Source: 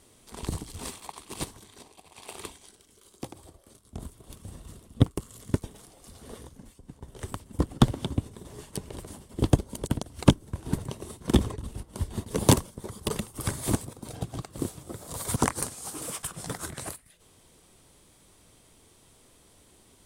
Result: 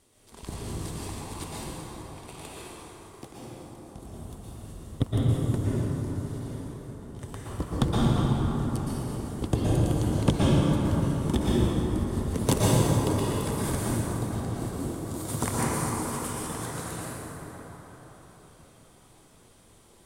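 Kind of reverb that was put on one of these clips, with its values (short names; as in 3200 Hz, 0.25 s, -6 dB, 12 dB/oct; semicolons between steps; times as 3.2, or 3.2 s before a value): plate-style reverb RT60 4.9 s, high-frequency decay 0.4×, pre-delay 0.105 s, DRR -8 dB; gain -6.5 dB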